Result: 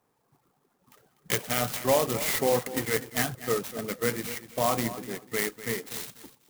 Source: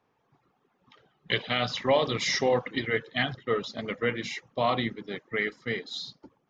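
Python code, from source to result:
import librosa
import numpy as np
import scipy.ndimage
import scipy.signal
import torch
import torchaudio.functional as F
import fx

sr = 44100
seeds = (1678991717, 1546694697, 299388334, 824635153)

y = fx.echo_feedback(x, sr, ms=246, feedback_pct=20, wet_db=-14)
y = fx.clock_jitter(y, sr, seeds[0], jitter_ms=0.077)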